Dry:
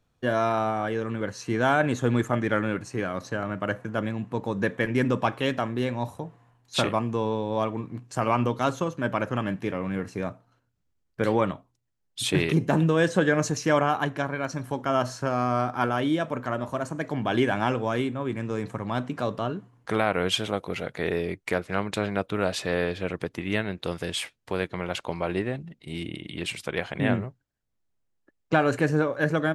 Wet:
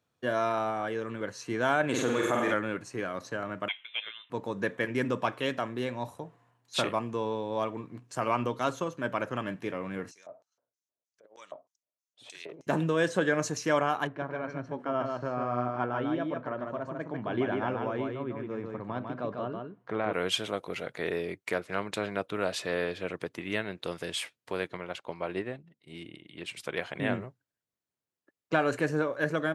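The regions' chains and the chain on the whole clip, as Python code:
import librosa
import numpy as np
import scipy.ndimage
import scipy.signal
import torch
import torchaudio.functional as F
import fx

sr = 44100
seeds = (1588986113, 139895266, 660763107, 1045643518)

y = fx.chain(x, sr, fx.low_shelf(hz=170.0, db=-9.0),
    fx.room_flutter(wall_m=8.1, rt60_s=0.95),
    fx.env_flatten(amount_pct=70), at=(1.89, 2.54))
y = fx.chain(y, sr, fx.highpass(hz=580.0, slope=12),
    fx.freq_invert(carrier_hz=3800), at=(3.68, 4.3))
y = fx.chain(y, sr, fx.filter_lfo_bandpass(shape='square', hz=3.2, low_hz=610.0, high_hz=6200.0, q=3.7),
    fx.over_compress(threshold_db=-41.0, ratio=-0.5), at=(10.11, 12.67))
y = fx.chain(y, sr, fx.spacing_loss(db_at_10k=33),
    fx.echo_single(ms=147, db=-4.0), at=(14.07, 20.13))
y = fx.chain(y, sr, fx.high_shelf(hz=5900.0, db=-6.0),
    fx.upward_expand(threshold_db=-44.0, expansion=1.5), at=(24.77, 26.57))
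y = scipy.signal.sosfilt(scipy.signal.butter(2, 140.0, 'highpass', fs=sr, output='sos'), y)
y = fx.peak_eq(y, sr, hz=200.0, db=-4.0, octaves=1.1)
y = fx.notch(y, sr, hz=800.0, q=16.0)
y = y * 10.0 ** (-3.5 / 20.0)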